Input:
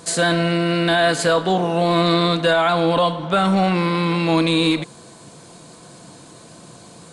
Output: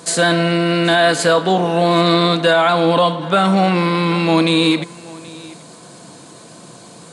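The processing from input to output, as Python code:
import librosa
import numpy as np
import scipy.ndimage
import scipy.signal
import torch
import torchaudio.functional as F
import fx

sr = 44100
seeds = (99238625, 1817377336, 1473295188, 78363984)

p1 = scipy.signal.sosfilt(scipy.signal.butter(2, 130.0, 'highpass', fs=sr, output='sos'), x)
p2 = p1 + fx.echo_single(p1, sr, ms=779, db=-21.5, dry=0)
y = F.gain(torch.from_numpy(p2), 3.5).numpy()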